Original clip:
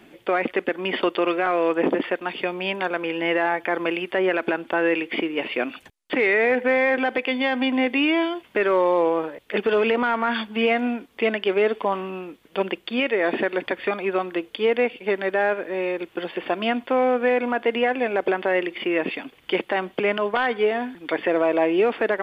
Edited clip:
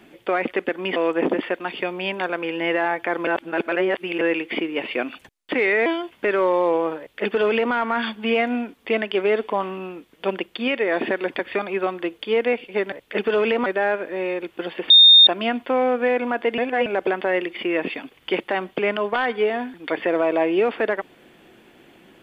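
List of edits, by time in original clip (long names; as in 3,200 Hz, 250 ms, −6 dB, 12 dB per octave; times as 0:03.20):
0:00.96–0:01.57: remove
0:03.88–0:04.82: reverse
0:06.47–0:08.18: remove
0:09.31–0:10.05: duplicate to 0:15.24
0:16.48: insert tone 3,660 Hz −6.5 dBFS 0.37 s
0:17.79–0:18.07: reverse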